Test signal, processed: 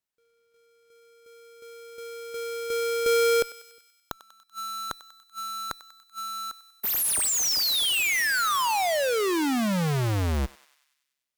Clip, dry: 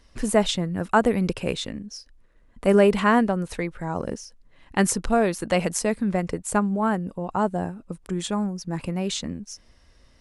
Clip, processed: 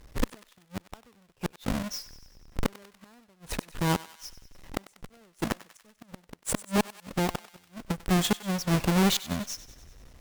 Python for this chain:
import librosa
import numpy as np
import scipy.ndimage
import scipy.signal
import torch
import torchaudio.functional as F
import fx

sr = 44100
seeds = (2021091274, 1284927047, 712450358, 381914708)

y = fx.halfwave_hold(x, sr)
y = fx.gate_flip(y, sr, shuts_db=-16.0, range_db=-42)
y = fx.echo_thinned(y, sr, ms=96, feedback_pct=63, hz=1000.0, wet_db=-15)
y = fx.cheby_harmonics(y, sr, harmonics=(6,), levels_db=(-31,), full_scale_db=-10.0)